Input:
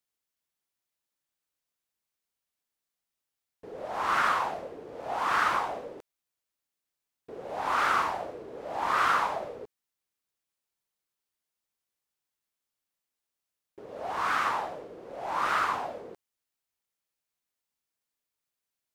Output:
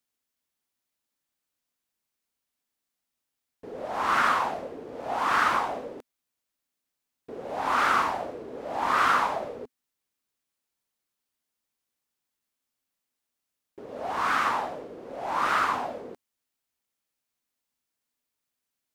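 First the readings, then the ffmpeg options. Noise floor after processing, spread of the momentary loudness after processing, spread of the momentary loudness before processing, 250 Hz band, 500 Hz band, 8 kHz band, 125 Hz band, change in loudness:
−85 dBFS, 18 LU, 18 LU, +5.5 dB, +2.5 dB, +2.5 dB, +3.0 dB, +2.5 dB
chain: -af "equalizer=frequency=250:width=4.1:gain=7,volume=2.5dB"

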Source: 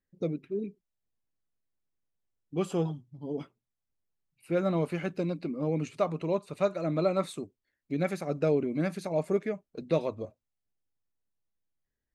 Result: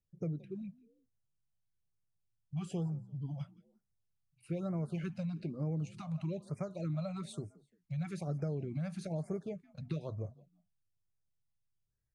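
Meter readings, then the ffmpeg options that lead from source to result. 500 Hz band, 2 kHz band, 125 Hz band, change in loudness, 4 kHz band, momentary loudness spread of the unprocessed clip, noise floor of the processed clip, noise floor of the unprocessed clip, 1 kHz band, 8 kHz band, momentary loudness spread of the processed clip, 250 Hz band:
−14.5 dB, −13.5 dB, −1.5 dB, −8.5 dB, −9.5 dB, 11 LU, −82 dBFS, below −85 dBFS, −14.0 dB, −6.5 dB, 8 LU, −7.0 dB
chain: -filter_complex "[0:a]lowshelf=frequency=470:gain=-5.5,aresample=22050,aresample=44100,equalizer=frequency=125:width_type=o:width=1:gain=11,equalizer=frequency=250:width_type=o:width=1:gain=-11,equalizer=frequency=500:width_type=o:width=1:gain=-7,equalizer=frequency=1000:width_type=o:width=1:gain=-9,equalizer=frequency=2000:width_type=o:width=1:gain=-11,equalizer=frequency=4000:width_type=o:width=1:gain=-7,equalizer=frequency=8000:width_type=o:width=1:gain=-10,acompressor=threshold=-39dB:ratio=6,asplit=3[link_01][link_02][link_03];[link_02]adelay=172,afreqshift=36,volume=-22dB[link_04];[link_03]adelay=344,afreqshift=72,volume=-32.5dB[link_05];[link_01][link_04][link_05]amix=inputs=3:normalize=0,acrossover=split=340|3000[link_06][link_07][link_08];[link_07]acompressor=threshold=-45dB:ratio=6[link_09];[link_06][link_09][link_08]amix=inputs=3:normalize=0,afftfilt=real='re*(1-between(b*sr/1024,340*pow(3500/340,0.5+0.5*sin(2*PI*1.1*pts/sr))/1.41,340*pow(3500/340,0.5+0.5*sin(2*PI*1.1*pts/sr))*1.41))':imag='im*(1-between(b*sr/1024,340*pow(3500/340,0.5+0.5*sin(2*PI*1.1*pts/sr))/1.41,340*pow(3500/340,0.5+0.5*sin(2*PI*1.1*pts/sr))*1.41))':win_size=1024:overlap=0.75,volume=6dB"

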